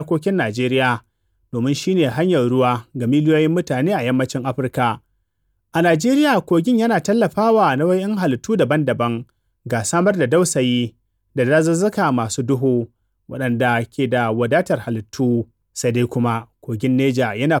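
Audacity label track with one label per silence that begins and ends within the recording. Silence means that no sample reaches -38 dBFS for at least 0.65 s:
4.980000	5.740000	silence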